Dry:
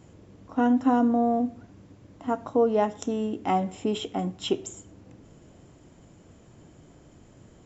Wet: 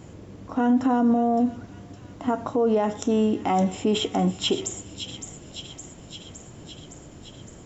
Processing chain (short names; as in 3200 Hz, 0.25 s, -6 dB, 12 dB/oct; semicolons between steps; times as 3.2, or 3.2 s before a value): limiter -21.5 dBFS, peak gain reduction 10.5 dB; thin delay 0.563 s, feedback 69%, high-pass 2900 Hz, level -7 dB; gain +8 dB